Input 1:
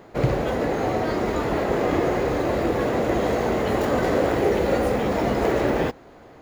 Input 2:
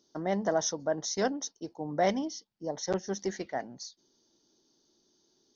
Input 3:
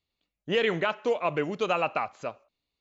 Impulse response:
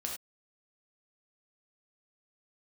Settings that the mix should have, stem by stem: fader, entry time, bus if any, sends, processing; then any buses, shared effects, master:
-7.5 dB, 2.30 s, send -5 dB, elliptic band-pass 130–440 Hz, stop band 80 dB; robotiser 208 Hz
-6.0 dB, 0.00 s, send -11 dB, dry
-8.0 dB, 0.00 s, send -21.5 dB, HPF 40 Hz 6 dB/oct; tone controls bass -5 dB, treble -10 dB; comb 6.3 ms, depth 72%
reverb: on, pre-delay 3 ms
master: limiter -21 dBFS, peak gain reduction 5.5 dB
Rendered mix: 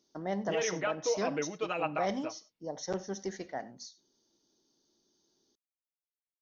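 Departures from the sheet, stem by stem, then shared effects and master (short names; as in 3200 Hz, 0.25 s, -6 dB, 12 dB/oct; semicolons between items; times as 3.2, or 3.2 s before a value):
stem 1: muted; stem 3: send off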